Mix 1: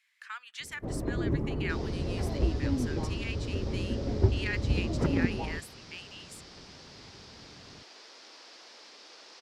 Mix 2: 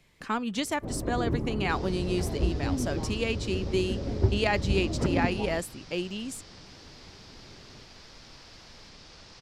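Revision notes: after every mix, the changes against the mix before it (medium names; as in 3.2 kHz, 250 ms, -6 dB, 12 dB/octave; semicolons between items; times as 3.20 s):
speech: remove ladder high-pass 1.4 kHz, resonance 45%; second sound: remove high-pass 320 Hz 24 dB/octave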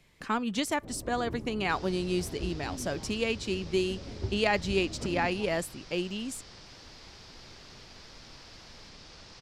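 first sound -10.5 dB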